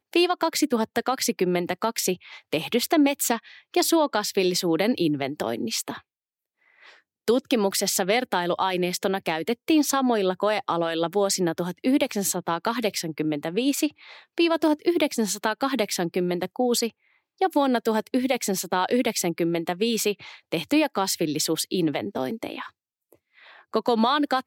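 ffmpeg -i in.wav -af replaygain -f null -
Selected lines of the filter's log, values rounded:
track_gain = +4.9 dB
track_peak = 0.305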